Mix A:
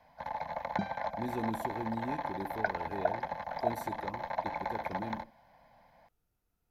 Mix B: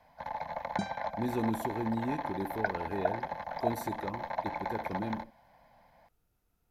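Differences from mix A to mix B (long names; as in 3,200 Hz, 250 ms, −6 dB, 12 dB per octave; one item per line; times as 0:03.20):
speech +4.5 dB
second sound: remove high-frequency loss of the air 240 metres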